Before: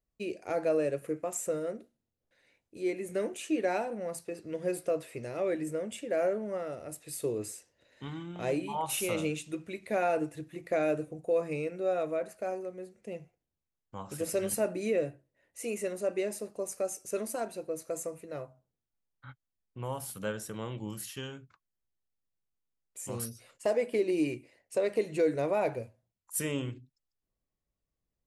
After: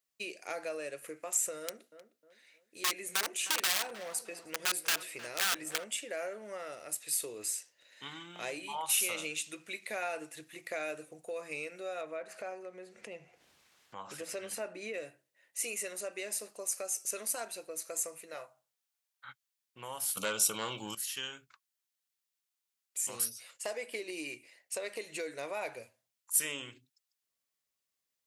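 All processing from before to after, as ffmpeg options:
-filter_complex "[0:a]asettb=1/sr,asplit=3[s0][s1][s2];[s0]atrim=end=1.614[s3];[s1]atrim=start=1.61:end=5.84,asetpts=PTS-STARTPTS,afade=t=in:d=0.004:c=qsin,afade=t=out:st=4.226:d=0.004:c=qsin,aeval=exprs='(mod(21.1*val(0)+1,2)-1)/21.1':c=same,asplit=2[s4][s5];[s5]adelay=309,lowpass=f=1400:p=1,volume=0.2,asplit=2[s6][s7];[s7]adelay=309,lowpass=f=1400:p=1,volume=0.38,asplit=2[s8][s9];[s9]adelay=309,lowpass=f=1400:p=1,volume=0.38,asplit=2[s10][s11];[s11]adelay=309,lowpass=f=1400:p=1,volume=0.38[s12];[s4][s6][s8][s10][s12]amix=inputs=5:normalize=0,atrim=end_sample=186543[s13];[s2]atrim=start=5.836[s14];[s3][s13]acrossfade=d=0.004:c1=hsin:c2=qsin[s15];[s15][s14]acrossfade=d=0.004:c1=qsin:c2=hsin,asettb=1/sr,asplit=3[s16][s17][s18];[s16]atrim=end=12.014[s19];[s17]atrim=start=12.01:end=14.94,asetpts=PTS-STARTPTS,afade=t=in:d=0.004:c=qsin,afade=t=out:st=2.926:d=0.004:c=qsin,aemphasis=mode=reproduction:type=75fm,acompressor=mode=upward:threshold=0.0178:ratio=2.5:attack=3.2:release=140:knee=2.83:detection=peak[s20];[s18]atrim=start=14.936[s21];[s19][s20]acrossfade=d=0.004:c1=hsin:c2=qsin[s22];[s22][s21]acrossfade=d=0.004:c1=qsin:c2=hsin,asettb=1/sr,asplit=3[s23][s24][s25];[s23]atrim=end=18.344[s26];[s24]atrim=start=18.34:end=19.29,asetpts=PTS-STARTPTS,afade=t=in:d=0.004:c=qsin,afade=t=out:st=0.946:d=0.004:c=qsin,lowshelf=f=470:t=q:w=1.5:g=-6,asplit=2[s27][s28];[s28]adelay=24,volume=0.282[s29];[s27][s29]amix=inputs=2:normalize=0,atrim=end_sample=41895[s30];[s25]atrim=start=19.286[s31];[s26][s30]acrossfade=d=0.004:c1=hsin:c2=qsin[s32];[s32][s31]acrossfade=d=0.004:c1=qsin:c2=hsin,asettb=1/sr,asplit=3[s33][s34][s35];[s33]atrim=end=20.174[s36];[s34]atrim=start=20.17:end=20.95,asetpts=PTS-STARTPTS,afade=t=in:d=0.004:c=qsin,afade=t=out:st=0.776:d=0.004:c=qsin,asuperstop=centerf=1800:order=20:qfactor=2.6,acontrast=82,aeval=exprs='0.168*sin(PI/2*1.58*val(0)/0.168)':c=same[s37];[s35]atrim=start=20.946[s38];[s36][s37]acrossfade=d=0.004:c1=hsin:c2=qsin[s39];[s39][s38]acrossfade=d=0.004:c1=qsin:c2=hsin,acompressor=threshold=0.0178:ratio=2,highpass=f=290:p=1,tiltshelf=f=970:g=-9"

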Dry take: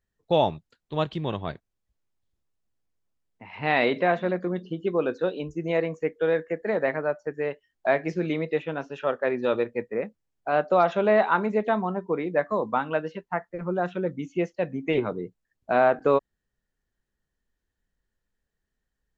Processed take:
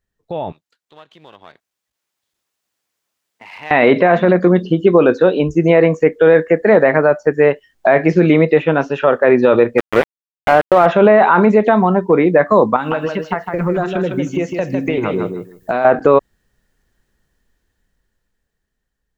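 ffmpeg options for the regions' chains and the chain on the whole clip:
-filter_complex "[0:a]asettb=1/sr,asplit=3[s0][s1][s2];[s0]atrim=end=0.524[s3];[s1]atrim=start=0.52:end=3.71,asetpts=PTS-STARTPTS,afade=t=in:d=0.004:c=qsin,afade=t=out:st=3.186:d=0.004:c=qsin,aeval=exprs='if(lt(val(0),0),0.447*val(0),val(0))':c=same,highpass=f=1200:p=1,acompressor=threshold=0.00224:ratio=2:attack=3.2:release=140:knee=1:detection=peak[s4];[s2]atrim=start=3.706[s5];[s3][s4]acrossfade=d=0.004:c1=hsin:c2=qsin[s6];[s6][s5]acrossfade=d=0.004:c1=qsin:c2=hsin,asettb=1/sr,asplit=3[s7][s8][s9];[s7]atrim=end=9.784[s10];[s8]atrim=start=9.78:end=10.86,asetpts=PTS-STARTPTS,afade=t=in:d=0.004:c=qsin,afade=t=out:st=1.076:d=0.004:c=qsin,equalizer=f=200:t=o:w=0.42:g=-6,aeval=exprs='val(0)*gte(abs(val(0)),0.0531)':c=same[s11];[s9]atrim=start=10.856[s12];[s10][s11]acrossfade=d=0.004:c1=hsin:c2=qsin[s13];[s13][s12]acrossfade=d=0.004:c1=qsin:c2=hsin,asettb=1/sr,asplit=3[s14][s15][s16];[s14]atrim=end=11.524[s17];[s15]atrim=start=11.52:end=12.13,asetpts=PTS-STARTPTS,afade=t=in:d=0.004:c=qsin,afade=t=out:st=0.606:d=0.004:c=qsin,bandreject=f=1200:w=18,acompressor=threshold=0.0501:ratio=2:attack=3.2:release=140:knee=1:detection=peak[s18];[s16]atrim=start=12.126[s19];[s17][s18]acrossfade=d=0.004:c1=hsin:c2=qsin[s20];[s20][s19]acrossfade=d=0.004:c1=qsin:c2=hsin,asettb=1/sr,asplit=3[s21][s22][s23];[s21]atrim=end=12.764[s24];[s22]atrim=start=12.76:end=15.85,asetpts=PTS-STARTPTS,afade=t=in:d=0.004:c=qsin,afade=t=out:st=3.086:d=0.004:c=qsin,aemphasis=mode=production:type=50fm,acompressor=threshold=0.0282:ratio=10:attack=3.2:release=140:knee=1:detection=peak,aecho=1:1:156|312|468:0.531|0.0849|0.0136,atrim=end_sample=136269[s25];[s23]atrim=start=15.846[s26];[s24][s25]acrossfade=d=0.004:c1=hsin:c2=qsin[s27];[s27][s26]acrossfade=d=0.004:c1=qsin:c2=hsin,acrossover=split=2800[s28][s29];[s29]acompressor=threshold=0.00141:ratio=4:attack=1:release=60[s30];[s28][s30]amix=inputs=2:normalize=0,alimiter=limit=0.119:level=0:latency=1:release=22,dynaudnorm=f=340:g=11:m=4.73,volume=1.58"

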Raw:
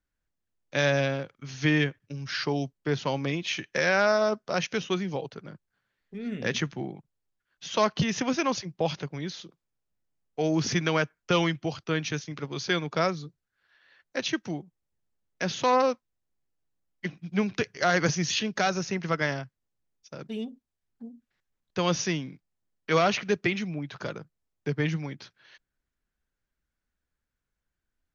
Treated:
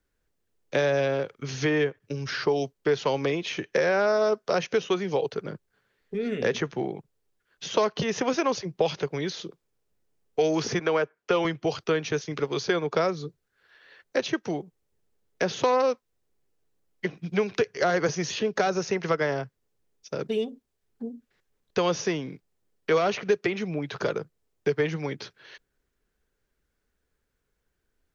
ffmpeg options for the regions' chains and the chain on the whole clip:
-filter_complex "[0:a]asettb=1/sr,asplit=3[s0][s1][s2];[s0]atrim=end=10.794[s3];[s1]atrim=start=10.79:end=11.45,asetpts=PTS-STARTPTS,afade=t=in:d=0.004:c=qsin,afade=t=out:st=0.656:d=0.004:c=qsin,highpass=f=310:p=1,highshelf=f=5200:g=-12[s4];[s2]atrim=start=11.446[s5];[s3][s4]acrossfade=d=0.004:c1=hsin:c2=qsin[s6];[s6][s5]acrossfade=d=0.004:c1=qsin:c2=hsin,equalizer=f=430:t=o:w=0.56:g=10,acrossover=split=530|1300[s7][s8][s9];[s7]acompressor=threshold=0.0158:ratio=4[s10];[s8]acompressor=threshold=0.0251:ratio=4[s11];[s9]acompressor=threshold=0.00891:ratio=4[s12];[s10][s11][s12]amix=inputs=3:normalize=0,volume=2.11"

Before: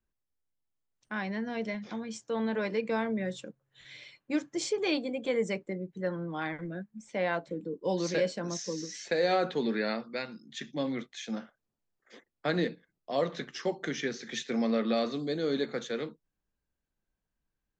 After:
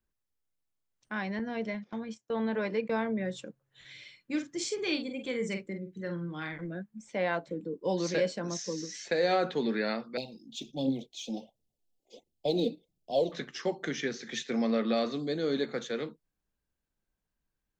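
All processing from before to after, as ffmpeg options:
-filter_complex "[0:a]asettb=1/sr,asplit=3[s0][s1][s2];[s0]atrim=end=1.394[s3];[s1]atrim=start=1.39:end=3.33,asetpts=PTS-STARTPTS,afade=t=in:d=0.004:c=qsin,afade=t=out:st=1.936:d=0.004:c=qsin,agate=range=0.112:threshold=0.00891:ratio=16:release=100:detection=peak,highshelf=f=5400:g=-7.5[s4];[s2]atrim=start=3.326[s5];[s3][s4]acrossfade=d=0.004:c1=hsin:c2=qsin[s6];[s6][s5]acrossfade=d=0.004:c1=qsin:c2=hsin,asettb=1/sr,asplit=3[s7][s8][s9];[s7]atrim=end=3.924[s10];[s8]atrim=start=3.92:end=6.58,asetpts=PTS-STARTPTS,afade=t=in:d=0.004:c=qsin,afade=t=out:st=2.656:d=0.004:c=qsin,equalizer=f=720:w=0.98:g=-9.5,asplit=2[s11][s12];[s12]adelay=46,volume=0.422[s13];[s11][s13]amix=inputs=2:normalize=0,atrim=end_sample=117306[s14];[s9]atrim=start=6.576[s15];[s10][s14]acrossfade=d=0.004:c1=hsin:c2=qsin[s16];[s16][s15]acrossfade=d=0.004:c1=qsin:c2=hsin,asettb=1/sr,asplit=3[s17][s18][s19];[s17]atrim=end=10.174[s20];[s18]atrim=start=10.17:end=13.32,asetpts=PTS-STARTPTS,afade=t=in:d=0.004:c=qsin,afade=t=out:st=3.146:d=0.004:c=qsin,aphaser=in_gain=1:out_gain=1:delay=4.3:decay=0.56:speed=1.4:type=triangular,asuperstop=centerf=1500:order=8:qfactor=0.78[s21];[s19]atrim=start=13.316[s22];[s20][s21]acrossfade=d=0.004:c1=hsin:c2=qsin[s23];[s23][s22]acrossfade=d=0.004:c1=qsin:c2=hsin"

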